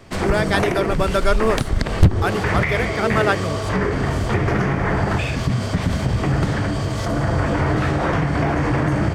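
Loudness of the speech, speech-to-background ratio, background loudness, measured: −22.5 LKFS, −1.5 dB, −21.0 LKFS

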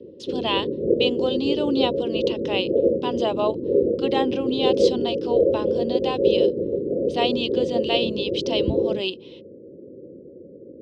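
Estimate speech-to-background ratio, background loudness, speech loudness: −4.0 dB, −23.5 LKFS, −27.5 LKFS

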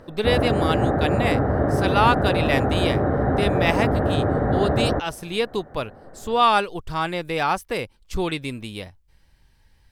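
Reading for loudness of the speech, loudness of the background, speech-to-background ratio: −24.5 LKFS, −22.0 LKFS, −2.5 dB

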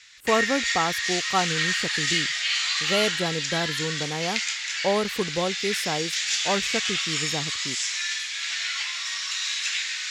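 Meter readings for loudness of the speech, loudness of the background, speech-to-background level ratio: −29.0 LKFS, −25.0 LKFS, −4.0 dB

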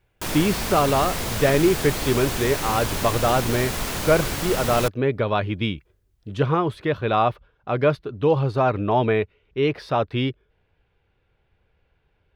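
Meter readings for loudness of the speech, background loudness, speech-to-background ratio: −22.5 LKFS, −27.0 LKFS, 4.5 dB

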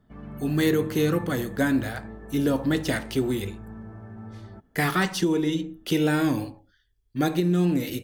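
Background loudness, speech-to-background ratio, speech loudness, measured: −41.0 LKFS, 15.5 dB, −25.5 LKFS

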